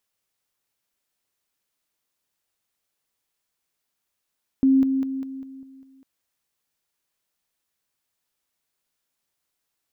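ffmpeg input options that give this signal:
-f lavfi -i "aevalsrc='pow(10,(-13.5-6*floor(t/0.2))/20)*sin(2*PI*267*t)':d=1.4:s=44100"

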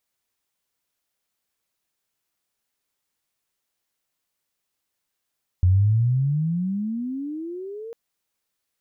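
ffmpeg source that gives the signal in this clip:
-f lavfi -i "aevalsrc='pow(10,(-13-20*t/2.3)/20)*sin(2*PI*87.9*2.3/(29*log(2)/12)*(exp(29*log(2)/12*t/2.3)-1))':d=2.3:s=44100"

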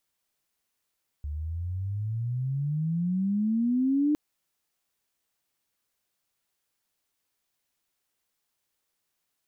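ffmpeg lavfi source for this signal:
-f lavfi -i "aevalsrc='pow(10,(-20.5+10*(t/2.91-1))/20)*sin(2*PI*71.6*2.91/(25*log(2)/12)*(exp(25*log(2)/12*t/2.91)-1))':d=2.91:s=44100"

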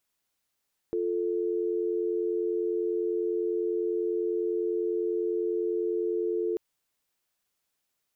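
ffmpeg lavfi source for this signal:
-f lavfi -i "aevalsrc='0.0376*(sin(2*PI*350*t)+sin(2*PI*440*t))':d=5.64:s=44100"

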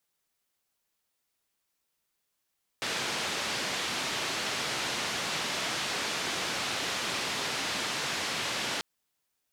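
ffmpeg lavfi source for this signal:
-f lavfi -i "anoisesrc=c=white:d=5.99:r=44100:seed=1,highpass=f=120,lowpass=f=4500,volume=-21dB"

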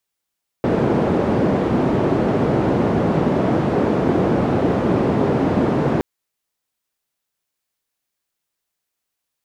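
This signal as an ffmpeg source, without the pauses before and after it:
-f lavfi -i "anoisesrc=c=white:d=5.37:r=44100:seed=1,highpass=f=120,lowpass=f=400,volume=5.7dB"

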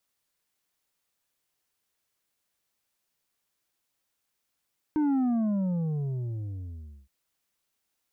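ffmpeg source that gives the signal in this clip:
-f lavfi -i "aevalsrc='0.0708*clip((2.12-t)/1.95,0,1)*tanh(2*sin(2*PI*310*2.12/log(65/310)*(exp(log(65/310)*t/2.12)-1)))/tanh(2)':d=2.12:s=44100"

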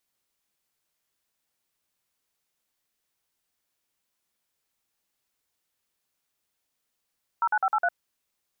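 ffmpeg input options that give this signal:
-f lavfi -i "aevalsrc='0.0708*clip(min(mod(t,0.103),0.055-mod(t,0.103))/0.002,0,1)*(eq(floor(t/0.103),0)*(sin(2*PI*941*mod(t,0.103))+sin(2*PI*1336*mod(t,0.103)))+eq(floor(t/0.103),1)*(sin(2*PI*852*mod(t,0.103))+sin(2*PI*1477*mod(t,0.103)))+eq(floor(t/0.103),2)*(sin(2*PI*770*mod(t,0.103))+sin(2*PI*1336*mod(t,0.103)))+eq(floor(t/0.103),3)*(sin(2*PI*852*mod(t,0.103))+sin(2*PI*1336*mod(t,0.103)))+eq(floor(t/0.103),4)*(sin(2*PI*697*mod(t,0.103))+sin(2*PI*1477*mod(t,0.103))))':d=0.515:s=44100"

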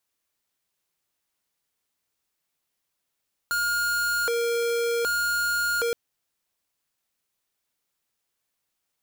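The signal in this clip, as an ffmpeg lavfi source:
-f lavfi -i "aevalsrc='0.0562*(2*lt(mod((944.5*t+475.5/0.65*(0.5-abs(mod(0.65*t,1)-0.5))),1),0.5)-1)':d=2.42:s=44100"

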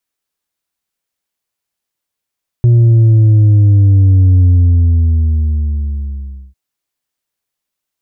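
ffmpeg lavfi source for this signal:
-f lavfi -i "aevalsrc='0.562*clip((3.9-t)/2.11,0,1)*tanh(1.5*sin(2*PI*120*3.9/log(65/120)*(exp(log(65/120)*t/3.9)-1)))/tanh(1.5)':d=3.9:s=44100"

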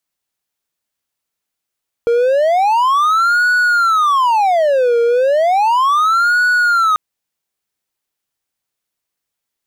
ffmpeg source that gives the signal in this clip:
-f lavfi -i "aevalsrc='0.398*(1-4*abs(mod((969*t-501/(2*PI*0.34)*sin(2*PI*0.34*t))+0.25,1)-0.5))':d=4.89:s=44100"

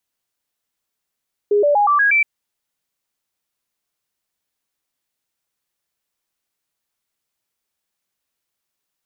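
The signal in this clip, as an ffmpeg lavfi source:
-f lavfi -i "aevalsrc='0.266*clip(min(mod(t,0.12),0.12-mod(t,0.12))/0.005,0,1)*sin(2*PI*412*pow(2,floor(t/0.12)/2)*mod(t,0.12))':d=0.72:s=44100"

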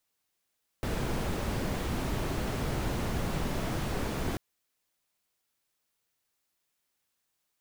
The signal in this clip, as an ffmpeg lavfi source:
-f lavfi -i "anoisesrc=c=brown:a=0.132:d=3.54:r=44100:seed=1"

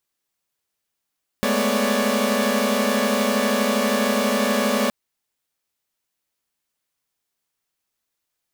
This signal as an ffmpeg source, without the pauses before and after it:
-f lavfi -i "aevalsrc='0.075*((2*mod(207.65*t,1)-1)+(2*mod(220*t,1)-1)+(2*mod(246.94*t,1)-1)+(2*mod(554.37*t,1)-1)+(2*mod(587.33*t,1)-1))':d=3.47:s=44100"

